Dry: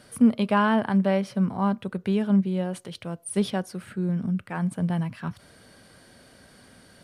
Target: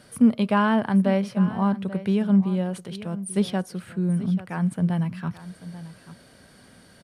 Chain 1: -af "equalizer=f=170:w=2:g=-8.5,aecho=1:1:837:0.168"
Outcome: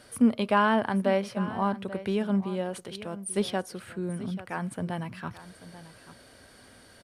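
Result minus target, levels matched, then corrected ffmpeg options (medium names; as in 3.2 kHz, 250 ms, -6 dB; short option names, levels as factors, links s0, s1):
125 Hz band -4.5 dB
-af "equalizer=f=170:w=2:g=3,aecho=1:1:837:0.168"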